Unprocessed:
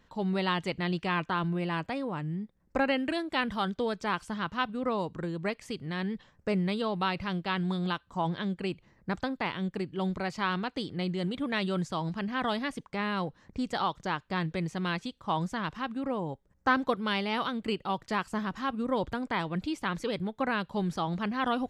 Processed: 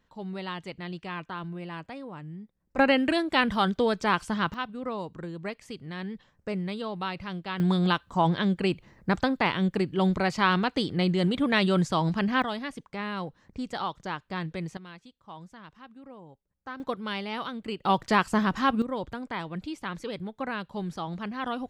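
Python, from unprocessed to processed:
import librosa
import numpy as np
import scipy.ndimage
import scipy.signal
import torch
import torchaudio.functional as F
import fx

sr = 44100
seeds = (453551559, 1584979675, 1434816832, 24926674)

y = fx.gain(x, sr, db=fx.steps((0.0, -6.5), (2.78, 6.0), (4.54, -3.0), (7.6, 7.0), (12.42, -2.0), (14.77, -14.5), (16.8, -3.0), (17.84, 8.0), (18.82, -3.0)))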